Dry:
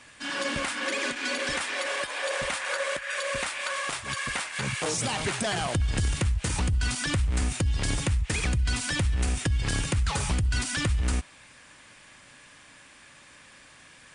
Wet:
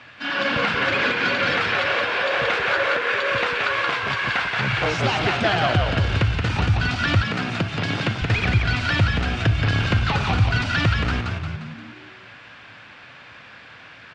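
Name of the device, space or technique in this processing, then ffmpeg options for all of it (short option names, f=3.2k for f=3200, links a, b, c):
frequency-shifting delay pedal into a guitar cabinet: -filter_complex "[0:a]asplit=7[a][b][c][d][e][f][g];[b]adelay=176,afreqshift=-73,volume=-3.5dB[h];[c]adelay=352,afreqshift=-146,volume=-9.7dB[i];[d]adelay=528,afreqshift=-219,volume=-15.9dB[j];[e]adelay=704,afreqshift=-292,volume=-22.1dB[k];[f]adelay=880,afreqshift=-365,volume=-28.3dB[l];[g]adelay=1056,afreqshift=-438,volume=-34.5dB[m];[a][h][i][j][k][l][m]amix=inputs=7:normalize=0,highpass=81,equalizer=f=110:t=q:w=4:g=9,equalizer=f=700:t=q:w=4:g=5,equalizer=f=1.4k:t=q:w=4:g=6,equalizer=f=2.6k:t=q:w=4:g=3,lowpass=f=4.3k:w=0.5412,lowpass=f=4.3k:w=1.3066,asettb=1/sr,asplit=3[n][o][p];[n]atrim=end=7.224[q];[o]atrim=start=7.22:end=8.22,asetpts=PTS-STARTPTS,afade=t=in:d=0.004:c=qsin,afade=t=out:st=0.996:d=0.004:c=qsin,highpass=f=130:w=0.5412,highpass=f=130:w=1.3066[r];[p]atrim=start=8.216[s];[q][r]acrossfade=d=0.004:c1=hsin:c2=qsin[t];[t][s]acrossfade=d=0.004:c1=qsin:c2=hsin,volume=5dB"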